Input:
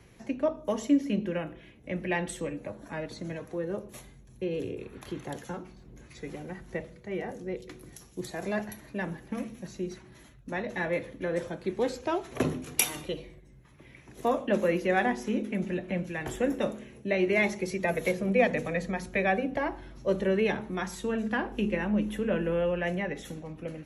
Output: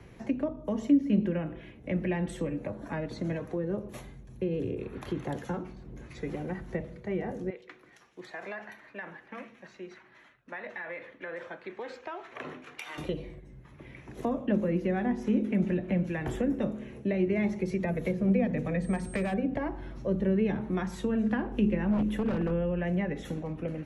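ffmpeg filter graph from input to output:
-filter_complex "[0:a]asettb=1/sr,asplit=3[a][b][c];[a]atrim=end=7.504[d];[b]atrim=start=7.5:end=12.98,asetpts=PTS-STARTPTS,afade=t=in:d=0.004:c=qsin,afade=t=out:st=5.476:d=0.004:c=qsin,bandpass=f=1.8k:t=q:w=1,acompressor=threshold=-38dB:ratio=6:attack=3.2:release=140:knee=1:detection=peak[e];[c]atrim=start=12.976[f];[d][e]acrossfade=d=0.004:c1=hsin:c2=qsin[g];[g][f]acrossfade=d=0.004:c1=qsin:c2=hsin,asettb=1/sr,asplit=3[h][i][j];[h]atrim=end=18.824[k];[i]atrim=start=18.82:end=19.34,asetpts=PTS-STARTPTS,afade=t=in:d=0.004:c=qsin,afade=t=out:st=0.516:d=0.004:c=qsin,aeval=exprs='val(0)+0.00794*sin(2*PI*8500*n/s)':c=same,volume=24.5dB,asoftclip=hard,volume=-24.5dB[l];[j]atrim=start=19.336[m];[k][l]acrossfade=d=0.004:c1=hsin:c2=qsin[n];[n][m]acrossfade=d=0.004:c1=qsin:c2=hsin,asettb=1/sr,asplit=3[o][p][q];[o]atrim=end=21.914[r];[p]atrim=start=21.91:end=22.51,asetpts=PTS-STARTPTS,afade=t=in:d=0.004:c=qsin,afade=t=out:st=0.596:d=0.004:c=qsin,equalizer=f=1.1k:t=o:w=2:g=-2.5,bandreject=f=790:w=22,aeval=exprs='0.0531*(abs(mod(val(0)/0.0531+3,4)-2)-1)':c=same[s];[q]atrim=start=22.506[t];[r][s]acrossfade=d=0.004:c1=hsin:c2=qsin[u];[u][t]acrossfade=d=0.004:c1=qsin:c2=hsin,highshelf=f=3.7k:g=-12,acrossover=split=280[v][w];[w]acompressor=threshold=-39dB:ratio=6[x];[v][x]amix=inputs=2:normalize=0,volume=5.5dB"

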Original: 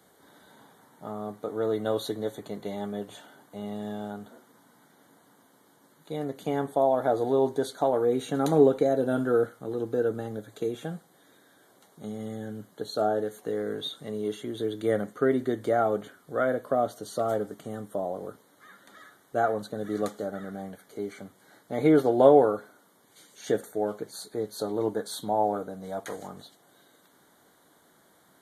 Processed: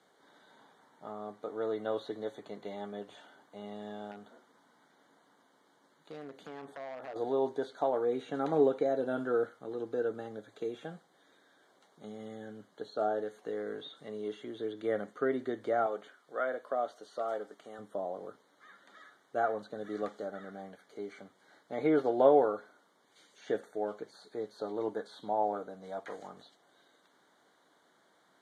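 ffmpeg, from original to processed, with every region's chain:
-filter_complex "[0:a]asettb=1/sr,asplit=3[a][b][c];[a]atrim=end=4.114[d];[b]atrim=start=4.11:end=7.16,asetpts=PTS-STARTPTS,afade=t=in:d=0.004:c=qsin,afade=t=out:st=3.046:d=0.004:c=qsin,acompressor=threshold=-32dB:ratio=6:attack=3.2:release=140:knee=1:detection=peak,aeval=exprs='0.0299*(abs(mod(val(0)/0.0299+3,4)-2)-1)':c=same[e];[c]atrim=start=7.156[f];[d][e]acrossfade=d=0.004:c1=hsin:c2=qsin[g];[g][f]acrossfade=d=0.004:c1=qsin:c2=hsin,asettb=1/sr,asplit=3[h][i][j];[h]atrim=end=15.864[k];[i]atrim=start=15.86:end=17.79,asetpts=PTS-STARTPTS,afade=t=in:d=0.004:c=qsin,afade=t=out:st=1.926:d=0.004:c=qsin,highpass=f=190:p=1,lowshelf=f=250:g=-11[l];[j]atrim=start=17.786[m];[k][l]acrossfade=d=0.004:c1=hsin:c2=qsin[n];[n][m]acrossfade=d=0.004:c1=qsin:c2=hsin,highpass=f=380:p=1,acrossover=split=2800[o][p];[p]acompressor=threshold=-51dB:ratio=4:attack=1:release=60[q];[o][q]amix=inputs=2:normalize=0,lowpass=5.6k,volume=-4dB"

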